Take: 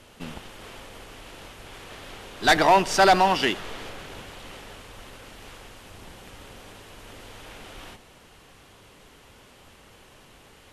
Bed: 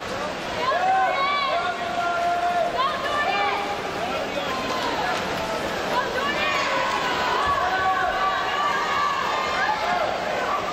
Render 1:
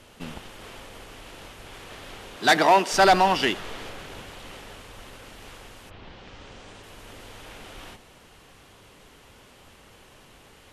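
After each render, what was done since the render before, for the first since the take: 2.36–2.92 s: high-pass 100 Hz -> 250 Hz 24 dB/octave; 5.89–6.82 s: low-pass 3.7 kHz -> 9.6 kHz 24 dB/octave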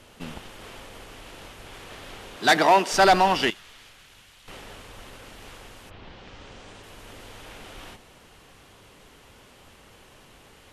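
3.50–4.48 s: amplifier tone stack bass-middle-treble 5-5-5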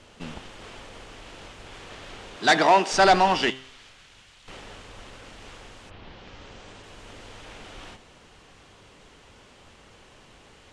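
low-pass 8.4 kHz 24 dB/octave; de-hum 131.1 Hz, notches 29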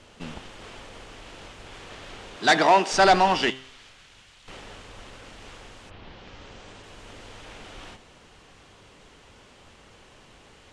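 no audible change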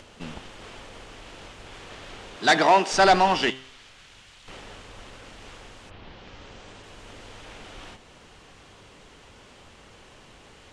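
upward compressor, threshold -45 dBFS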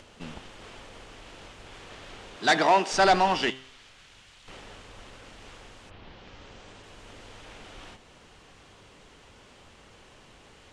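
trim -3 dB

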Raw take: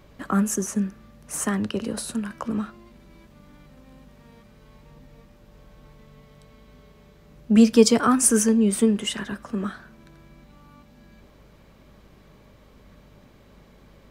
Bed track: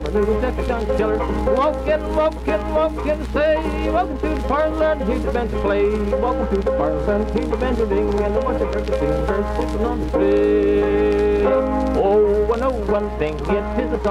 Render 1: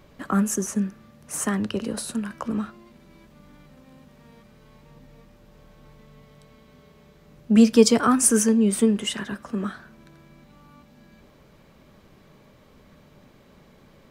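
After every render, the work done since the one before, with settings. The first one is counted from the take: de-hum 50 Hz, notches 2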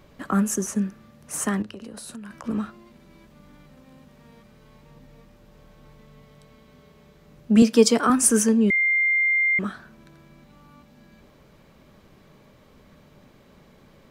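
1.62–2.44 s: compression 8:1, threshold -35 dBFS; 7.62–8.10 s: high-pass 200 Hz; 8.70–9.59 s: bleep 2.1 kHz -17.5 dBFS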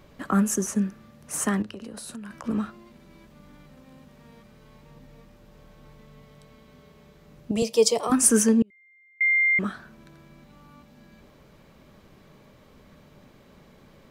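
7.51–8.12 s: static phaser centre 630 Hz, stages 4; 8.62–9.21 s: gate -6 dBFS, range -37 dB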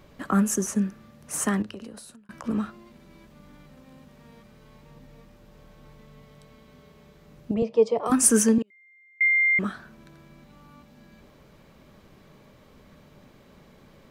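1.79–2.29 s: fade out; 7.54–8.06 s: low-pass 1.5 kHz; 8.58–9.28 s: frequency weighting A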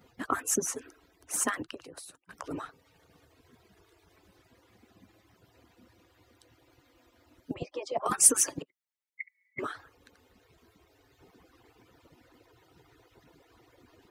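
harmonic-percussive separation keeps percussive; high-pass 120 Hz 6 dB/octave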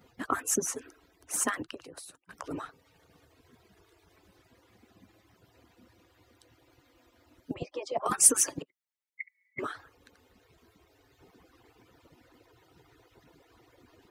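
no audible change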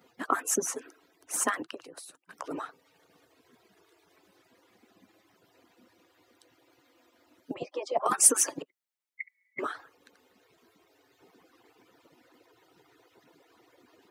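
high-pass 220 Hz 12 dB/octave; dynamic bell 810 Hz, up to +4 dB, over -47 dBFS, Q 0.7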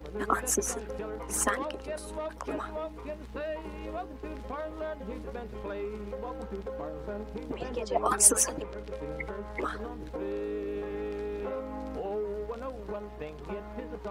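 add bed track -18.5 dB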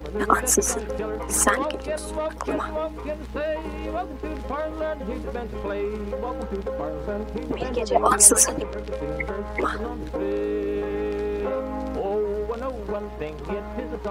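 trim +8.5 dB; peak limiter -1 dBFS, peak gain reduction 2.5 dB

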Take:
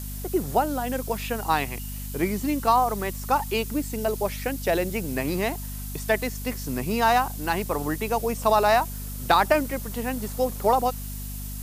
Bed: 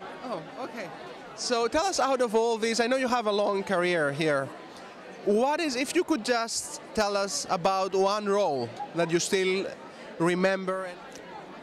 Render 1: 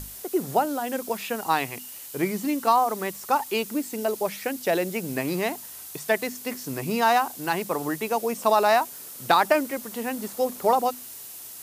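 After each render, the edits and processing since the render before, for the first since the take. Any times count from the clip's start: hum notches 50/100/150/200/250 Hz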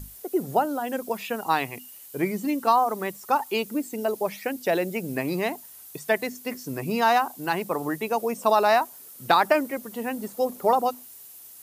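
noise reduction 9 dB, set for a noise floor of -41 dBFS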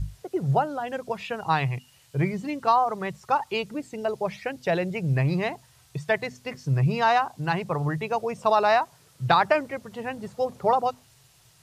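low-pass 5 kHz 12 dB/octave; resonant low shelf 180 Hz +10 dB, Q 3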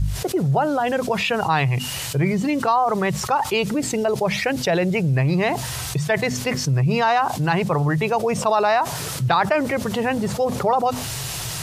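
level flattener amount 70%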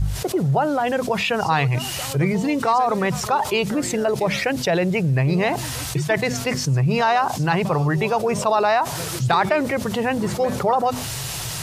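add bed -10 dB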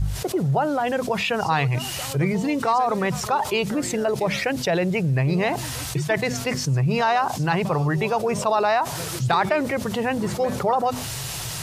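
trim -2 dB

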